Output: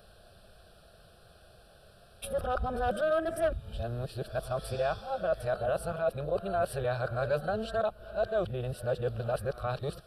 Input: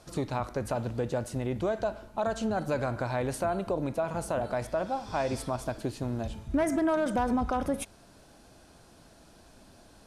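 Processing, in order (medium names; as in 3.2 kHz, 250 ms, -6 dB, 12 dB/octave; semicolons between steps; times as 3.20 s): reverse the whole clip; static phaser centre 1.4 kHz, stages 8; trim +1.5 dB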